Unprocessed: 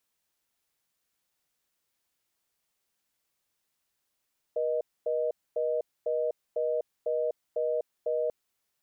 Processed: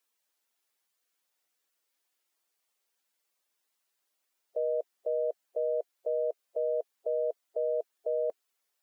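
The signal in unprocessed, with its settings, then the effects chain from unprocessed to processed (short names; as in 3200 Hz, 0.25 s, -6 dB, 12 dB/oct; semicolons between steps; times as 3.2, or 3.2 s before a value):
call progress tone reorder tone, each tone -28.5 dBFS 3.74 s
bin magnitudes rounded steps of 15 dB; HPF 330 Hz 12 dB/oct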